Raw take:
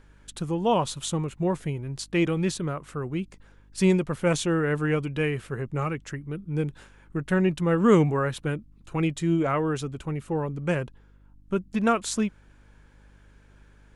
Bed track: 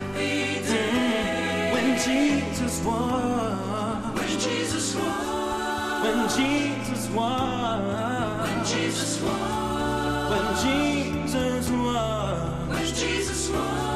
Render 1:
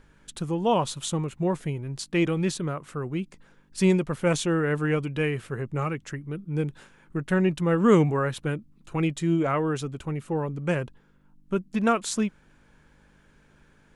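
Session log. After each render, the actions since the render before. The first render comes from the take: de-hum 50 Hz, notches 2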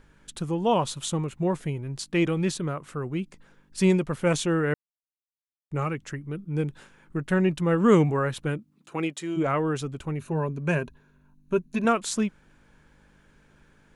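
4.74–5.71 mute; 8.57–9.36 HPF 130 Hz -> 450 Hz; 10.19–11.85 ripple EQ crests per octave 1.5, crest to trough 9 dB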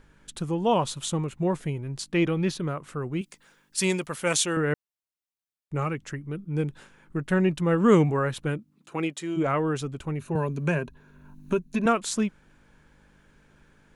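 2.14–2.6 bell 8000 Hz -11.5 dB 0.43 oct; 3.21–4.57 tilt +3 dB/oct; 10.35–11.86 three-band squash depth 70%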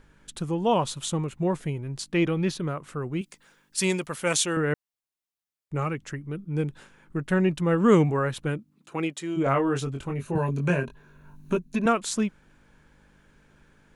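9.44–11.57 doubler 22 ms -4 dB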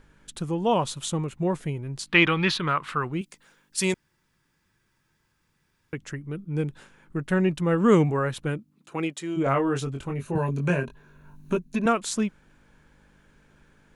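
2.07–3.12 band shelf 2000 Hz +13 dB 2.7 oct; 3.94–5.93 room tone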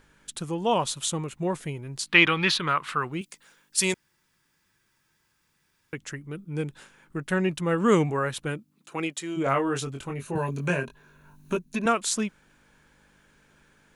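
tilt +1.5 dB/oct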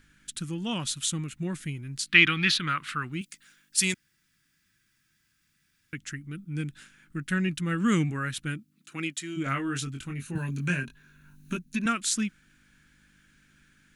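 band shelf 650 Hz -15.5 dB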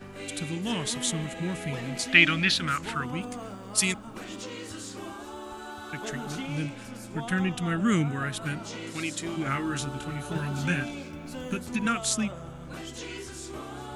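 add bed track -13 dB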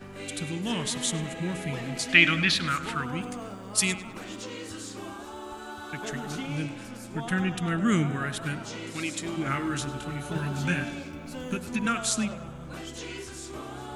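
tape echo 0.101 s, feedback 60%, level -12.5 dB, low-pass 3300 Hz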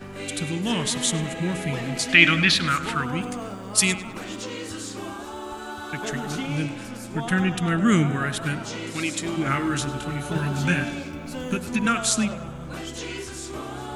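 gain +5 dB; limiter -2 dBFS, peak gain reduction 3 dB

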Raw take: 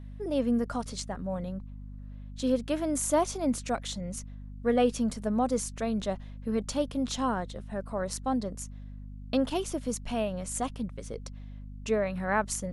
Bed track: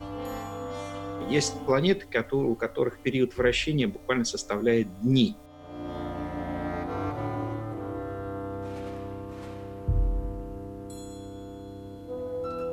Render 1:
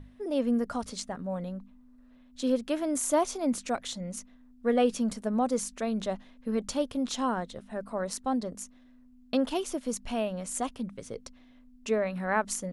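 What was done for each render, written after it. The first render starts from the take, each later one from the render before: notches 50/100/150/200 Hz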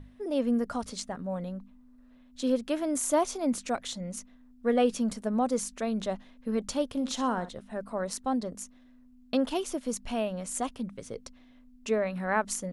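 6.88–7.49 flutter echo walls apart 10.5 m, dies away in 0.28 s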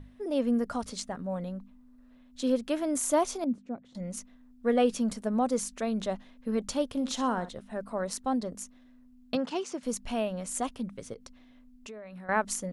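3.44–3.95 band-pass 200 Hz, Q 1.3; 9.35–9.83 speaker cabinet 150–7200 Hz, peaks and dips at 180 Hz +10 dB, 280 Hz -6 dB, 610 Hz -6 dB, 3400 Hz -6 dB; 11.13–12.29 compressor, threshold -42 dBFS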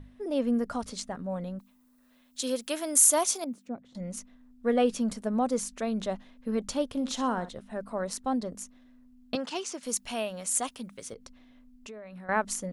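1.59–3.68 RIAA curve recording; 9.35–11.13 tilt +2.5 dB/oct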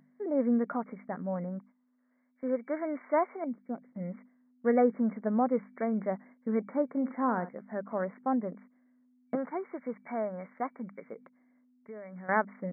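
FFT band-pass 150–2300 Hz; gate -52 dBFS, range -9 dB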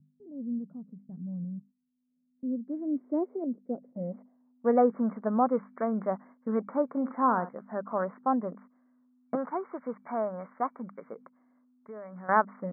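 low-pass sweep 140 Hz -> 1200 Hz, 1.93–4.94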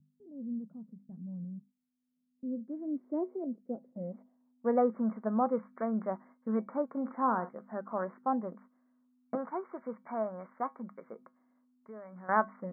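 resonator 73 Hz, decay 0.19 s, harmonics odd, mix 50%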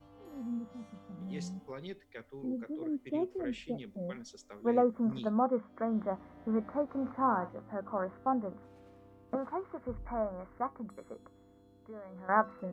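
add bed track -21 dB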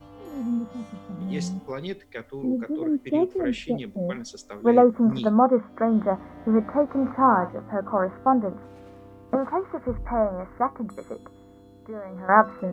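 gain +11 dB

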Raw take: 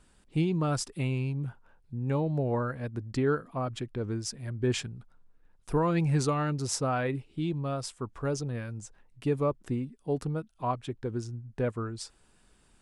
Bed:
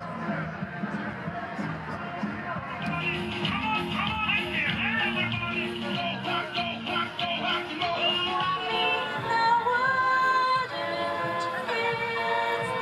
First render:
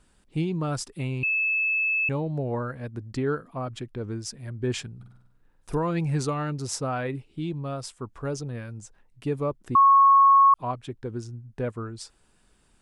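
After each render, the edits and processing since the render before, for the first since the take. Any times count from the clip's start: 1.23–2.09 bleep 2610 Hz -21.5 dBFS; 4.95–5.75 flutter echo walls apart 8.3 m, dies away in 0.77 s; 9.75–10.54 bleep 1100 Hz -12.5 dBFS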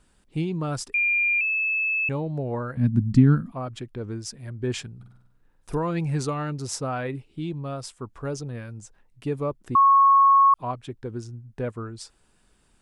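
0.94–1.41 bleep 2400 Hz -19 dBFS; 2.77–3.52 resonant low shelf 310 Hz +12.5 dB, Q 3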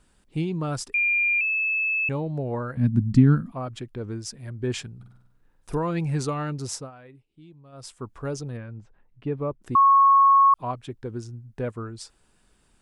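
6.7–7.93 dip -18 dB, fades 0.21 s; 8.57–9.62 air absorption 380 m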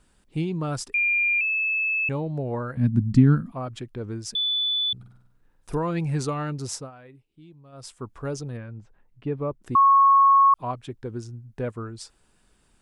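4.35–4.93 bleep 3480 Hz -21.5 dBFS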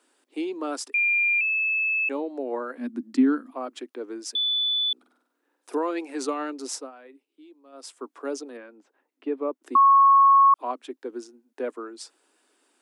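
steep high-pass 260 Hz 72 dB/oct; low shelf 370 Hz +3 dB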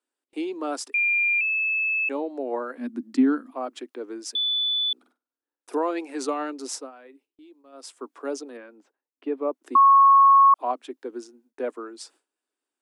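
gate with hold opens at -51 dBFS; dynamic EQ 720 Hz, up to +6 dB, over -36 dBFS, Q 2.4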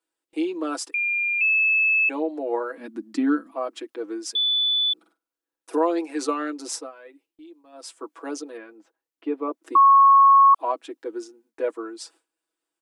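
comb 6.1 ms, depth 81%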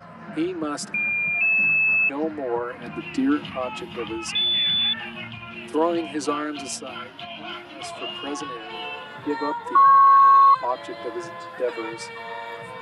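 add bed -7.5 dB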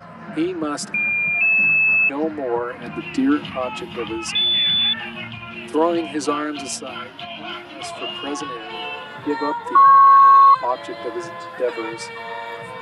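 gain +3.5 dB

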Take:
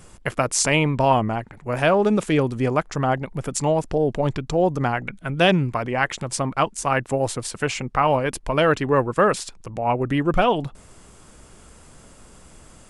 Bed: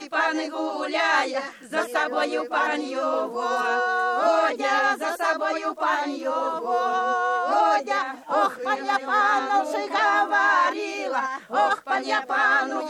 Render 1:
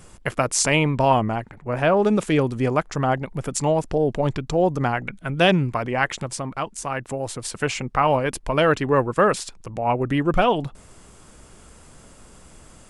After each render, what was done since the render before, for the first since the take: 1.54–1.97 high shelf 3800 Hz -11 dB; 6.26–7.44 compressor 1.5:1, threshold -33 dBFS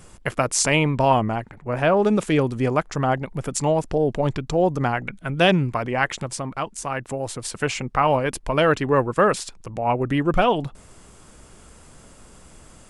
nothing audible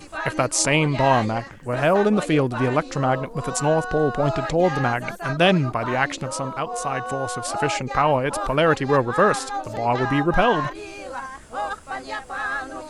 add bed -7 dB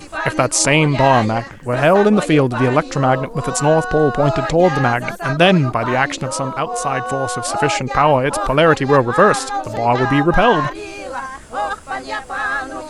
gain +6 dB; limiter -1 dBFS, peak gain reduction 2.5 dB

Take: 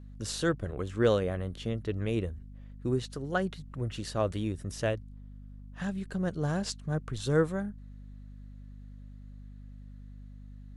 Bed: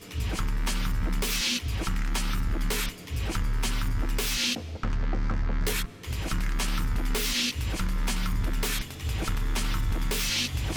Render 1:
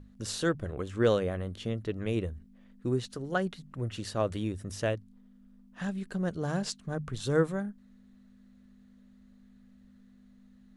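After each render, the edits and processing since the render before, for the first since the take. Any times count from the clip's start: notches 50/100/150 Hz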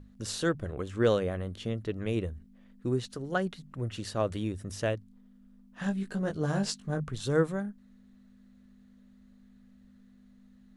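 5.8–7.04 doubler 20 ms -4 dB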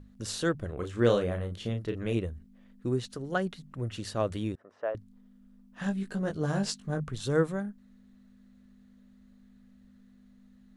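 0.74–2.18 doubler 34 ms -6.5 dB; 4.55–4.95 Butterworth band-pass 840 Hz, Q 0.9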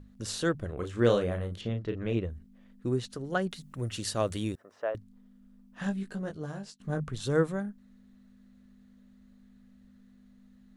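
1.61–2.3 air absorption 110 m; 3.51–4.97 high shelf 4300 Hz +11.5 dB; 5.81–6.8 fade out, to -22 dB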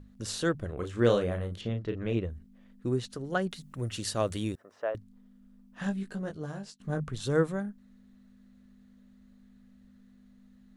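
nothing audible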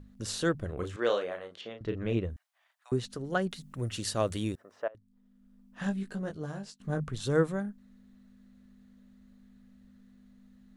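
0.96–1.81 BPF 510–5500 Hz; 2.36–2.92 steep high-pass 660 Hz 72 dB/oct; 4.88–5.83 fade in, from -22.5 dB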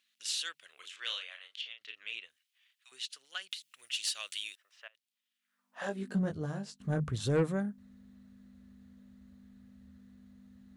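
high-pass sweep 2800 Hz -> 73 Hz, 5.37–6.42; soft clip -21 dBFS, distortion -14 dB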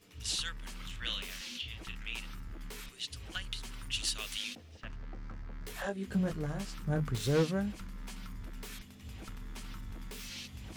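add bed -17 dB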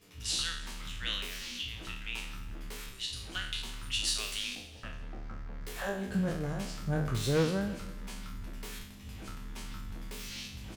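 spectral trails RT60 0.60 s; feedback echo 0.165 s, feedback 52%, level -18 dB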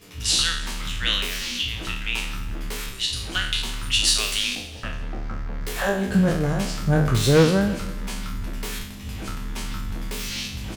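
gain +12 dB

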